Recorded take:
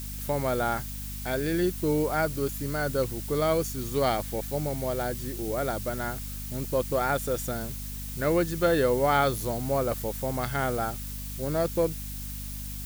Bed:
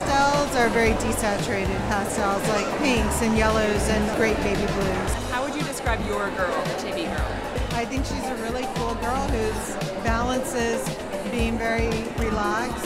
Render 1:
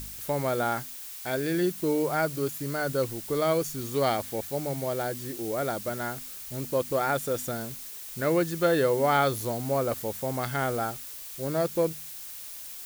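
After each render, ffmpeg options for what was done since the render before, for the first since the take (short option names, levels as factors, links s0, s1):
-af "bandreject=f=50:t=h:w=4,bandreject=f=100:t=h:w=4,bandreject=f=150:t=h:w=4,bandreject=f=200:t=h:w=4,bandreject=f=250:t=h:w=4"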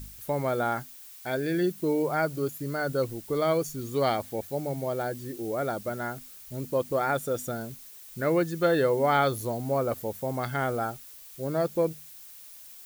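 -af "afftdn=nr=8:nf=-41"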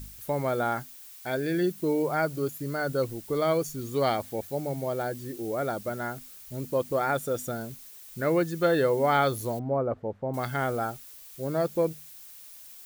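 -filter_complex "[0:a]asettb=1/sr,asplit=3[s0][s1][s2];[s0]atrim=end=9.594[s3];[s1]atrim=start=9.59:end=10.34,asetpts=PTS-STARTPTS,afade=t=in:d=0.004:c=qsin,afade=t=out:st=0.746:d=0.004:c=qsin,lowpass=1200[s4];[s2]atrim=start=10.336[s5];[s3][s4]acrossfade=d=0.004:c1=hsin:c2=qsin[s6];[s6][s5]acrossfade=d=0.004:c1=qsin:c2=hsin"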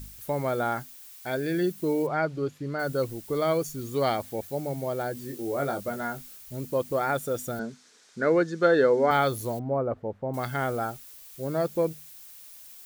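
-filter_complex "[0:a]asplit=3[s0][s1][s2];[s0]afade=t=out:st=2.06:d=0.02[s3];[s1]lowpass=4100,afade=t=in:st=2.06:d=0.02,afade=t=out:st=2.78:d=0.02[s4];[s2]afade=t=in:st=2.78:d=0.02[s5];[s3][s4][s5]amix=inputs=3:normalize=0,asettb=1/sr,asplit=3[s6][s7][s8];[s6]atrim=end=5.144[s9];[s7]atrim=start=5.14:end=6.37,asetpts=PTS-STARTPTS,afade=t=in:d=0.004:c=qsin,afade=t=out:st=1.226:d=0.004:c=qsin,asplit=2[s10][s11];[s11]adelay=21,volume=0.501[s12];[s10][s12]amix=inputs=2:normalize=0,atrim=end_sample=54243[s13];[s8]atrim=start=6.366[s14];[s9][s13]acrossfade=d=0.004:c1=hsin:c2=qsin[s15];[s15][s14]acrossfade=d=0.004:c1=qsin:c2=hsin,asettb=1/sr,asplit=3[s16][s17][s18];[s16]atrim=end=7.594[s19];[s17]atrim=start=7.59:end=9.11,asetpts=PTS-STARTPTS,afade=t=in:d=0.004:c=qsin,afade=t=out:st=1.516:d=0.004:c=qsin,highpass=180,equalizer=f=230:t=q:w=4:g=7,equalizer=f=450:t=q:w=4:g=6,equalizer=f=1500:t=q:w=4:g=7,equalizer=f=2800:t=q:w=4:g=-5,lowpass=f=6800:w=0.5412,lowpass=f=6800:w=1.3066[s20];[s18]atrim=start=9.106[s21];[s19][s20]acrossfade=d=0.004:c1=hsin:c2=qsin[s22];[s22][s21]acrossfade=d=0.004:c1=qsin:c2=hsin"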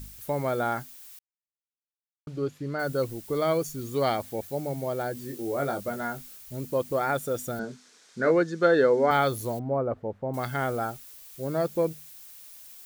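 -filter_complex "[0:a]asettb=1/sr,asplit=3[s0][s1][s2];[s0]atrim=end=7.614[s3];[s1]atrim=start=7.61:end=8.31,asetpts=PTS-STARTPTS,afade=t=in:d=0.004:c=qsin,afade=t=out:st=0.696:d=0.004:c=qsin,asplit=2[s4][s5];[s5]adelay=24,volume=0.501[s6];[s4][s6]amix=inputs=2:normalize=0,atrim=end_sample=30870[s7];[s2]atrim=start=8.306[s8];[s3][s7]acrossfade=d=0.004:c1=hsin:c2=qsin[s9];[s9][s8]acrossfade=d=0.004:c1=qsin:c2=hsin,asplit=3[s10][s11][s12];[s10]atrim=end=1.19,asetpts=PTS-STARTPTS,afade=t=out:st=1.186:d=0.004:c=hsin[s13];[s11]atrim=start=1.19:end=2.27,asetpts=PTS-STARTPTS,volume=0[s14];[s12]atrim=start=2.27,asetpts=PTS-STARTPTS,afade=t=in:d=0.004:c=hsin[s15];[s13][s14][s15]concat=n=3:v=0:a=1"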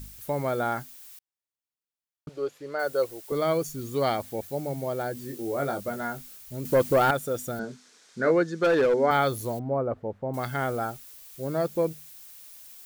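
-filter_complex "[0:a]asettb=1/sr,asplit=3[s0][s1][s2];[s0]atrim=end=2.294[s3];[s1]atrim=start=2.29:end=3.32,asetpts=PTS-STARTPTS,afade=t=in:d=0.004:c=qsin,afade=t=out:st=1.026:d=0.004:c=qsin,lowshelf=f=310:t=q:w=1.5:g=-13.5[s4];[s2]atrim=start=3.316[s5];[s3][s4]acrossfade=d=0.004:c1=hsin:c2=qsin[s6];[s6][s5]acrossfade=d=0.004:c1=qsin:c2=hsin,asettb=1/sr,asplit=3[s7][s8][s9];[s7]atrim=end=6.654[s10];[s8]atrim=start=6.65:end=7.11,asetpts=PTS-STARTPTS,afade=t=in:d=0.004:c=qsin,afade=t=out:st=0.456:d=0.004:c=qsin,aeval=exprs='0.188*sin(PI/2*1.58*val(0)/0.188)':c=same[s11];[s9]atrim=start=7.106[s12];[s10][s11]acrossfade=d=0.004:c1=hsin:c2=qsin[s13];[s13][s12]acrossfade=d=0.004:c1=qsin:c2=hsin,asettb=1/sr,asplit=3[s14][s15][s16];[s14]atrim=end=8.544[s17];[s15]atrim=start=8.54:end=8.94,asetpts=PTS-STARTPTS,afade=t=in:d=0.004:c=qsin,afade=t=out:st=0.396:d=0.004:c=qsin,asoftclip=type=hard:threshold=0.133[s18];[s16]atrim=start=8.936[s19];[s17][s18]acrossfade=d=0.004:c1=hsin:c2=qsin[s20];[s20][s19]acrossfade=d=0.004:c1=qsin:c2=hsin"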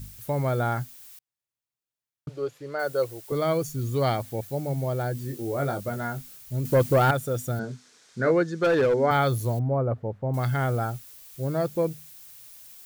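-af "equalizer=f=120:t=o:w=0.53:g=12"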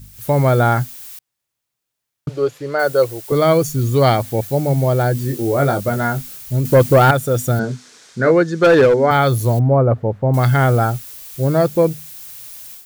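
-af "dynaudnorm=f=130:g=3:m=3.98"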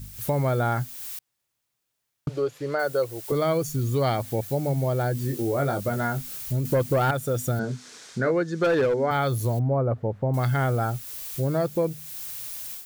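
-af "acompressor=threshold=0.0355:ratio=2"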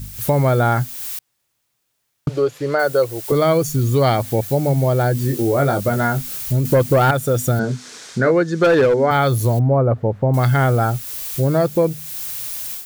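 -af "volume=2.51"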